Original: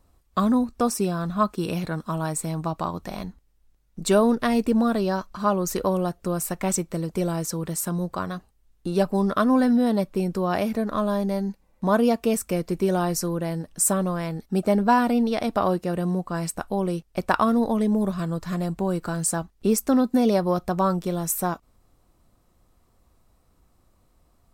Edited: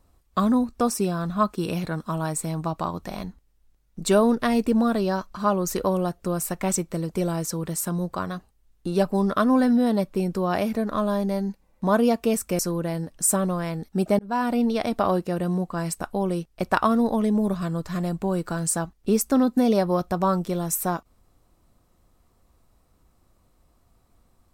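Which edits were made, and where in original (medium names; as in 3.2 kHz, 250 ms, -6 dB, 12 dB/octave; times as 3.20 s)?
12.59–13.16 s: delete
14.76–15.32 s: fade in equal-power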